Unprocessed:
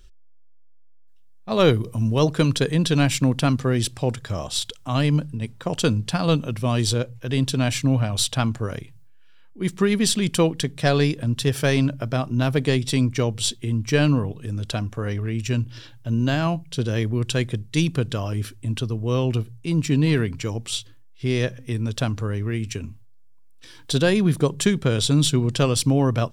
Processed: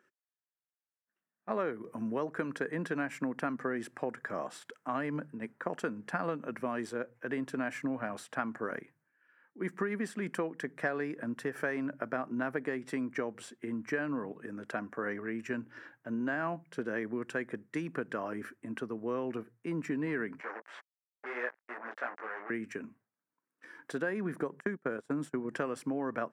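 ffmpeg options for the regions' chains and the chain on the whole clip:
-filter_complex "[0:a]asettb=1/sr,asplit=3[a][b][c];[a]atrim=end=20.404[d];[b]atrim=start=20.4:end=22.5,asetpts=PTS-STARTPTS,afade=t=in:d=0.004:c=qsin,afade=t=out:st=2.096:d=0.004:c=qsin,flanger=delay=16:depth=2.1:speed=2.9,acrusher=bits=4:mix=0:aa=0.5,highpass=620,lowpass=3.6k[e];[c]atrim=start=22.496[f];[d][e]acrossfade=d=0.004:c1=hsin:c2=qsin[g];[g][f]acrossfade=d=0.004:c1=qsin:c2=hsin,asettb=1/sr,asplit=3[h][i][j];[h]atrim=end=24.604[k];[i]atrim=start=24.6:end=25.51,asetpts=PTS-STARTPTS,afade=t=in:d=0.004:c=qsin,afade=t=out:st=0.906:d=0.004:c=qsin,equalizer=f=3.5k:w=1:g=-6.5,agate=range=-23dB:threshold=-22dB:ratio=16:release=100:detection=peak[l];[j]atrim=start=25.506[m];[k][l]acrossfade=d=0.004:c1=hsin:c2=qsin[n];[n][m]acrossfade=d=0.004:c1=qsin:c2=hsin,highpass=f=220:w=0.5412,highpass=f=220:w=1.3066,acompressor=threshold=-25dB:ratio=10,highshelf=f=2.5k:t=q:w=3:g=-13,volume=-5.5dB"

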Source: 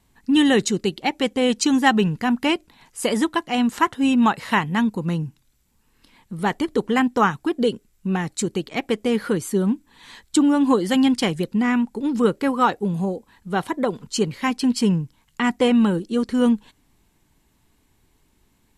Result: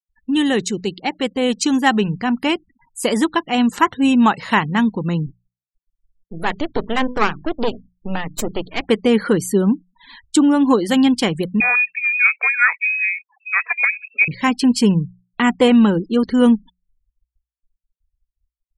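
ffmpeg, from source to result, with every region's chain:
-filter_complex "[0:a]asettb=1/sr,asplit=3[a][b][c];[a]atrim=end=5.264[d];[b]atrim=start=5.26:end=8.81,asetpts=PTS-STARTPTS,afade=t=in:d=0.004:c=qsin,afade=t=out:st=3.546:d=0.004:c=qsin,bandreject=f=50:t=h:w=6,bandreject=f=100:t=h:w=6,bandreject=f=150:t=h:w=6,bandreject=f=200:t=h:w=6,bandreject=f=250:t=h:w=6,aeval=exprs='max(val(0),0)':c=same[e];[c]atrim=start=8.806[f];[d][e]acrossfade=d=0.004:c1=hsin:c2=qsin[g];[g][f]acrossfade=d=0.004:c1=qsin:c2=hsin,asettb=1/sr,asplit=3[h][i][j];[h]atrim=end=11.604[k];[i]atrim=start=11.6:end=14.28,asetpts=PTS-STARTPTS,afade=t=in:d=0.004:c=qsin,afade=t=out:st=2.676:d=0.004:c=qsin,lowpass=f=2.3k:t=q:w=0.5098,lowpass=f=2.3k:t=q:w=0.6013,lowpass=f=2.3k:t=q:w=0.9,lowpass=f=2.3k:t=q:w=2.563,afreqshift=-2700,highpass=320[l];[j]atrim=start=14.276[m];[k][l]acrossfade=d=0.004:c1=hsin:c2=qsin[n];[n][m]acrossfade=d=0.004:c1=qsin:c2=hsin,afftfilt=real='re*gte(hypot(re,im),0.0112)':imag='im*gte(hypot(re,im),0.0112)':win_size=1024:overlap=0.75,bandreject=f=60:t=h:w=6,bandreject=f=120:t=h:w=6,bandreject=f=180:t=h:w=6,dynaudnorm=f=130:g=17:m=11.5dB,volume=-1dB"

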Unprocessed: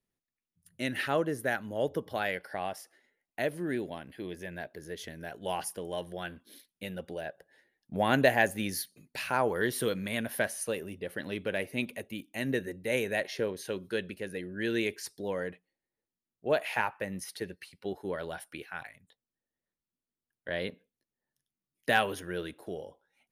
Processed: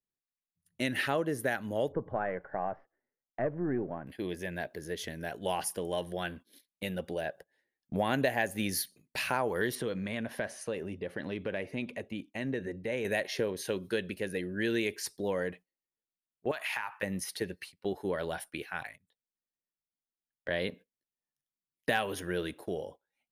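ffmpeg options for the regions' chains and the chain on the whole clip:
-filter_complex "[0:a]asettb=1/sr,asplit=3[a][b][c];[a]atrim=end=1.924[d];[b]atrim=start=1.92:end=4.07,asetpts=PTS-STARTPTS,afade=t=in:d=0.004:c=qsin,afade=t=out:st=2.146:d=0.004:c=qsin,aeval=exprs='if(lt(val(0),0),0.708*val(0),val(0))':c=same,lowpass=f=1.5k:w=0.5412,lowpass=f=1.5k:w=1.3066,equalizer=f=120:t=o:w=0.7:g=6.5[e];[c]atrim=start=4.066[f];[d][e]acrossfade=d=0.004:c1=hsin:c2=qsin[g];[g][f]acrossfade=d=0.004:c1=qsin:c2=hsin,asettb=1/sr,asplit=3[h][i][j];[h]atrim=end=9.754[k];[i]atrim=start=9.75:end=13.05,asetpts=PTS-STARTPTS,afade=t=in:d=0.004:c=qsin,afade=t=out:st=3.296:d=0.004:c=qsin,lowpass=5.3k,equalizer=f=3.6k:t=o:w=1.7:g=-4.5,acompressor=threshold=-37dB:ratio=2:attack=3.2:release=140:knee=1:detection=peak[l];[j]atrim=start=13.046[m];[k][l]acrossfade=d=0.004:c1=hsin:c2=qsin[n];[n][m]acrossfade=d=0.004:c1=qsin:c2=hsin,asettb=1/sr,asplit=3[o][p][q];[o]atrim=end=16.514[r];[p]atrim=start=16.51:end=17.03,asetpts=PTS-STARTPTS,afade=t=in:d=0.004:c=qsin,afade=t=out:st=0.516:d=0.004:c=qsin,lowshelf=f=730:t=q:w=1.5:g=-12,acompressor=threshold=-33dB:ratio=8:attack=3.2:release=140:knee=1:detection=peak[s];[q]atrim=start=17.026[t];[r][s]acrossfade=d=0.004:c1=hsin:c2=qsin[u];[u][t]acrossfade=d=0.004:c1=qsin:c2=hsin,agate=range=-15dB:threshold=-51dB:ratio=16:detection=peak,equalizer=f=1.4k:t=o:w=0.21:g=-2.5,acompressor=threshold=-31dB:ratio=3,volume=3.5dB"

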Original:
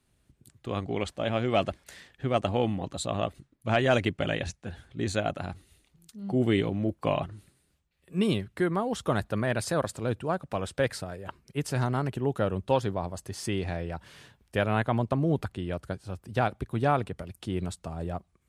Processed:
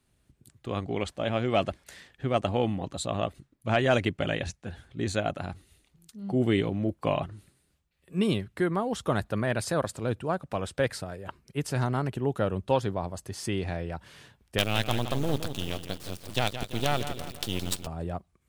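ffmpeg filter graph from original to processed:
-filter_complex "[0:a]asettb=1/sr,asplit=3[a][b][c];[a]atrim=end=14.584[d];[b]atrim=start=14.58:end=17.87,asetpts=PTS-STARTPTS,afade=t=in:d=0.004:c=qsin,afade=t=out:st=3.286:d=0.004:c=qsin,highshelf=f=2.3k:t=q:w=1.5:g=12.5,acrusher=bits=4:dc=4:mix=0:aa=0.000001,aecho=1:1:168|336|504|672|840:0.316|0.145|0.0669|0.0308|0.0142,atrim=end_sample=145089[e];[c]atrim=start=17.866[f];[d][e]acrossfade=d=0.004:c1=hsin:c2=qsin[g];[g][f]acrossfade=d=0.004:c1=qsin:c2=hsin"

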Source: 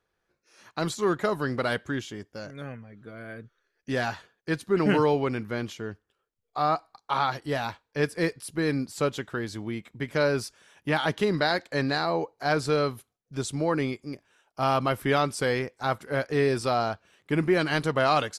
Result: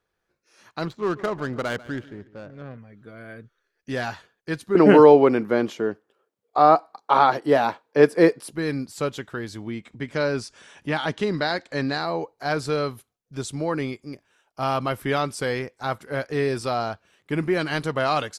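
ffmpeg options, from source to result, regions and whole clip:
-filter_complex "[0:a]asettb=1/sr,asplit=3[a][b][c];[a]atrim=end=0.854[d];[b]atrim=start=0.85:end=2.78,asetpts=PTS-STARTPTS,afade=t=in:d=0.004:c=qsin,afade=t=out:st=1.926:d=0.004:c=qsin,adynamicsmooth=sensitivity=4:basefreq=950,aecho=1:1:143|286|429:0.119|0.0511|0.022,atrim=end_sample=85113[e];[c]atrim=start=2.776[f];[d][e]acrossfade=d=0.004:c1=hsin:c2=qsin[g];[g][f]acrossfade=d=0.004:c1=qsin:c2=hsin,asettb=1/sr,asplit=3[h][i][j];[h]atrim=end=4.754[k];[i]atrim=start=4.75:end=8.53,asetpts=PTS-STARTPTS,afade=t=in:d=0.004:c=qsin,afade=t=out:st=3.776:d=0.004:c=qsin,highpass=170,equalizer=f=470:w=0.36:g=12.5[l];[j]atrim=start=8.526[m];[k][l]acrossfade=d=0.004:c1=hsin:c2=qsin[n];[n][m]acrossfade=d=0.004:c1=qsin:c2=hsin,asettb=1/sr,asplit=3[o][p][q];[o]atrim=end=9.674[r];[p]atrim=start=9.67:end=12,asetpts=PTS-STARTPTS,afade=t=in:d=0.004:c=qsin,afade=t=out:st=2.326:d=0.004:c=qsin,lowpass=f=9.3k:w=0.5412,lowpass=f=9.3k:w=1.3066,equalizer=f=250:t=o:w=0.35:g=3.5,acompressor=mode=upward:threshold=-38dB:ratio=2.5:attack=3.2:release=140:knee=2.83:detection=peak[s];[q]atrim=start=11.996[t];[r][s]acrossfade=d=0.004:c1=hsin:c2=qsin[u];[u][t]acrossfade=d=0.004:c1=qsin:c2=hsin"

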